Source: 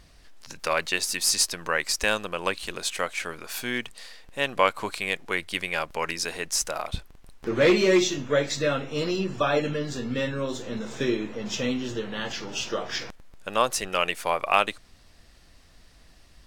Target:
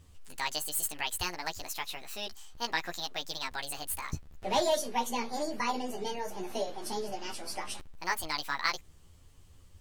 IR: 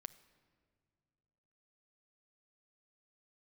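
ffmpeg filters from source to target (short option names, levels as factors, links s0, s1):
-af "flanger=delay=18.5:depth=4.2:speed=0.38,asetrate=74088,aresample=44100,lowshelf=f=190:g=7.5,volume=0.531"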